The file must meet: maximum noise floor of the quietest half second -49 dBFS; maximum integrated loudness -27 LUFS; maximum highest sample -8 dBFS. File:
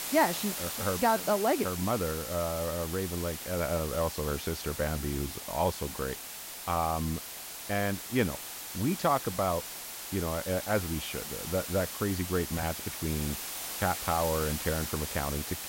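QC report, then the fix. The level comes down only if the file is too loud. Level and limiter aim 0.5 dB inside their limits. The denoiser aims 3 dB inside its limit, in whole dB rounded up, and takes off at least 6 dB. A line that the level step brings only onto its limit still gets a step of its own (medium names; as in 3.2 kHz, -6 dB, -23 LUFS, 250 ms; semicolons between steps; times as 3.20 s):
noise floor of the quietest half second -43 dBFS: fail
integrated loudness -31.5 LUFS: pass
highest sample -13.0 dBFS: pass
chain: noise reduction 9 dB, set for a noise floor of -43 dBFS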